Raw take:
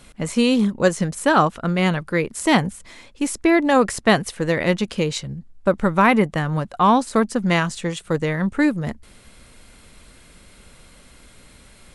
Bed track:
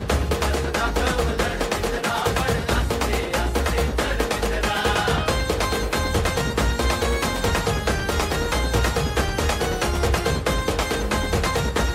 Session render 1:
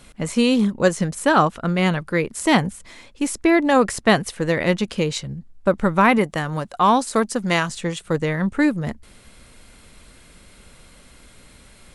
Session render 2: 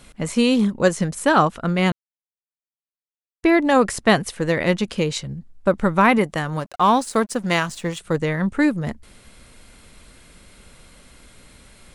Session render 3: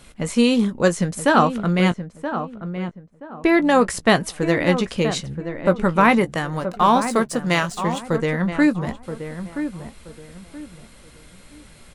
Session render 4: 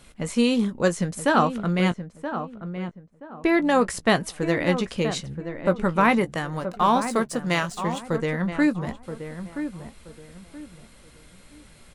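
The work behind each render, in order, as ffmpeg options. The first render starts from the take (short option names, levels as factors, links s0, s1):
-filter_complex "[0:a]asettb=1/sr,asplit=3[s0][s1][s2];[s0]atrim=end=6.184[s3];[s1]atrim=start=6.18:end=7.69,asetpts=PTS-STARTPTS,afade=t=in:d=0.004:c=qsin,afade=t=out:st=1.506:d=0.004:c=qsin,bass=f=250:g=-5,treble=f=4000:g=5[s4];[s2]atrim=start=7.686[s5];[s3][s4]acrossfade=d=0.004:c1=hsin:c2=qsin[s6];[s6][s5]acrossfade=d=0.004:c1=qsin:c2=hsin"
-filter_complex "[0:a]asettb=1/sr,asplit=3[s0][s1][s2];[s0]atrim=end=6.604[s3];[s1]atrim=start=6.6:end=7.99,asetpts=PTS-STARTPTS,afade=t=in:d=0.004:c=qsin,afade=t=out:st=1.386:d=0.004:c=qsin,aeval=exprs='sgn(val(0))*max(abs(val(0))-0.00708,0)':c=same[s4];[s2]atrim=start=7.986[s5];[s3][s4]acrossfade=d=0.004:c1=hsin:c2=qsin[s6];[s6][s5]acrossfade=d=0.004:c1=qsin:c2=hsin,asplit=3[s7][s8][s9];[s7]atrim=end=1.92,asetpts=PTS-STARTPTS,afade=t=out:st=1.916:d=0.004:c=hsin[s10];[s8]atrim=start=1.92:end=3.43,asetpts=PTS-STARTPTS,volume=0[s11];[s9]atrim=start=3.43,asetpts=PTS-STARTPTS,afade=t=in:d=0.004:c=hsin[s12];[s10][s11][s12]concat=n=3:v=0:a=1"
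-filter_complex "[0:a]asplit=2[s0][s1];[s1]adelay=17,volume=0.251[s2];[s0][s2]amix=inputs=2:normalize=0,asplit=2[s3][s4];[s4]adelay=976,lowpass=f=1400:p=1,volume=0.355,asplit=2[s5][s6];[s6]adelay=976,lowpass=f=1400:p=1,volume=0.3,asplit=2[s7][s8];[s8]adelay=976,lowpass=f=1400:p=1,volume=0.3[s9];[s3][s5][s7][s9]amix=inputs=4:normalize=0"
-af "volume=0.631"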